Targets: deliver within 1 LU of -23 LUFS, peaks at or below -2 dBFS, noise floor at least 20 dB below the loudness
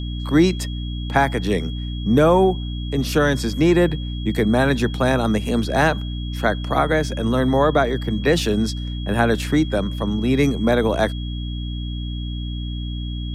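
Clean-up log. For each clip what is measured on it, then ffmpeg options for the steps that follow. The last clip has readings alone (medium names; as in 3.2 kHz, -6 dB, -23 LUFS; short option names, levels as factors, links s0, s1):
hum 60 Hz; highest harmonic 300 Hz; hum level -24 dBFS; steady tone 3.3 kHz; tone level -37 dBFS; loudness -20.5 LUFS; peak level -4.5 dBFS; loudness target -23.0 LUFS
-> -af "bandreject=f=60:t=h:w=6,bandreject=f=120:t=h:w=6,bandreject=f=180:t=h:w=6,bandreject=f=240:t=h:w=6,bandreject=f=300:t=h:w=6"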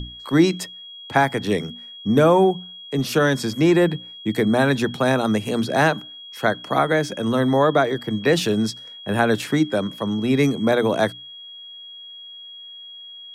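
hum not found; steady tone 3.3 kHz; tone level -37 dBFS
-> -af "bandreject=f=3300:w=30"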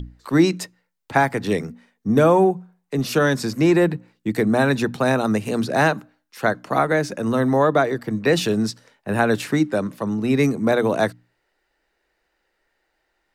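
steady tone not found; loudness -20.5 LUFS; peak level -4.5 dBFS; loudness target -23.0 LUFS
-> -af "volume=0.75"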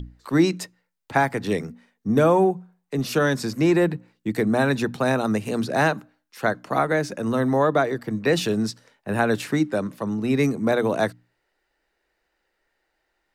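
loudness -23.0 LUFS; peak level -7.0 dBFS; noise floor -75 dBFS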